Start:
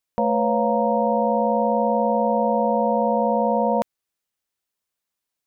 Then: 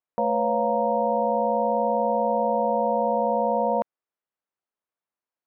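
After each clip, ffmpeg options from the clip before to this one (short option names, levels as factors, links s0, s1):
-af "lowpass=1300,aemphasis=mode=production:type=bsi,volume=0.891"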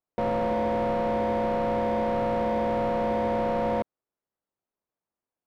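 -af "volume=25.1,asoftclip=hard,volume=0.0398,tiltshelf=f=1100:g=7.5"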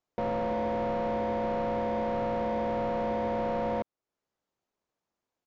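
-af "alimiter=level_in=2:limit=0.0631:level=0:latency=1:release=442,volume=0.501,aresample=16000,aresample=44100,volume=1.78"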